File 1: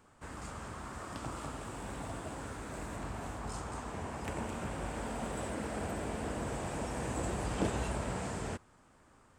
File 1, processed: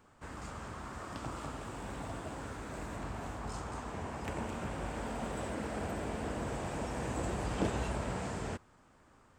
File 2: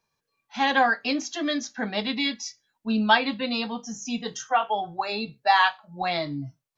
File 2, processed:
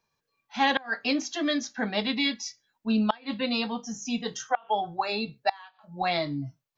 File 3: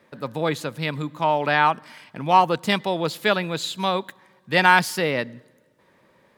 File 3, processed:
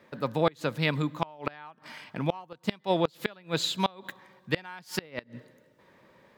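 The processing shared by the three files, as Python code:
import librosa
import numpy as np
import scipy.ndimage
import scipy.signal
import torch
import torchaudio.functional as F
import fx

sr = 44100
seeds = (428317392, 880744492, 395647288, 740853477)

y = fx.peak_eq(x, sr, hz=10000.0, db=-6.5, octaves=0.66)
y = fx.gate_flip(y, sr, shuts_db=-11.0, range_db=-28)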